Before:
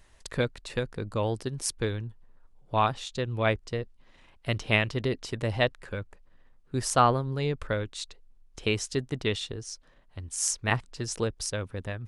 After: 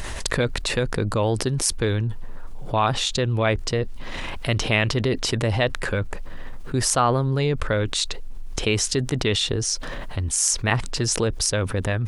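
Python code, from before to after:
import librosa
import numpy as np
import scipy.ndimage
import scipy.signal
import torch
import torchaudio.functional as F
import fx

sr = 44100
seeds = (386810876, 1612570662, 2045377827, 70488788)

y = fx.env_flatten(x, sr, amount_pct=70)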